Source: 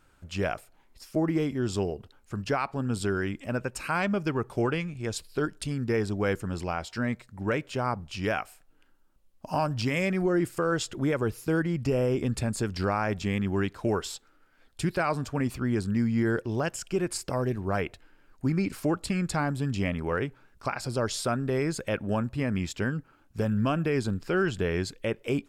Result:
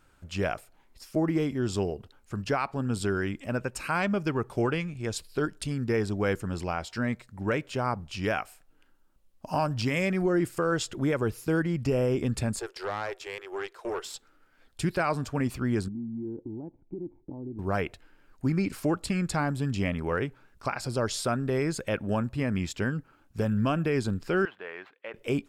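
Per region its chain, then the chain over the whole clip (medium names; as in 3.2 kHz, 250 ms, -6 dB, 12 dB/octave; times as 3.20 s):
12.59–14.14 s: Chebyshev high-pass 350 Hz, order 6 + valve stage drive 24 dB, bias 0.6
15.88–17.59 s: bass shelf 440 Hz +7.5 dB + compression 4:1, threshold -24 dBFS + cascade formant filter u
24.45–25.14 s: median filter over 9 samples + high-pass 870 Hz + distance through air 400 m
whole clip: none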